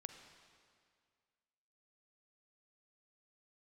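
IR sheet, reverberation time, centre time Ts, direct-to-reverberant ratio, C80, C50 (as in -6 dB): 2.1 s, 34 ms, 6.5 dB, 8.0 dB, 7.0 dB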